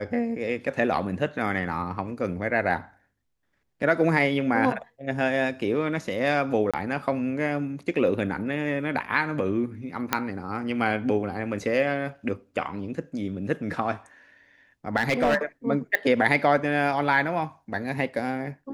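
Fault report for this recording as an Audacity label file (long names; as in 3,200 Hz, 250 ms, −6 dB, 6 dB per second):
6.710000	6.740000	drop-out 26 ms
10.130000	10.130000	click −6 dBFS
14.960000	15.380000	clipping −17 dBFS
15.950000	15.950000	click −10 dBFS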